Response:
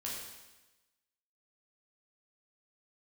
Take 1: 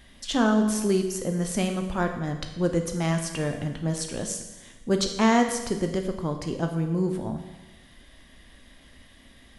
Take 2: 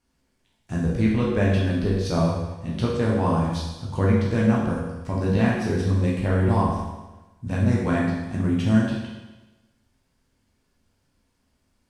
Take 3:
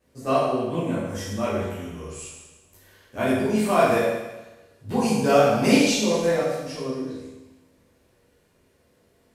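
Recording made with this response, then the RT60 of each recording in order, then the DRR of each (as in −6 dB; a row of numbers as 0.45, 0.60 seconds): 2; 1.1, 1.1, 1.1 seconds; 4.5, −5.0, −10.5 decibels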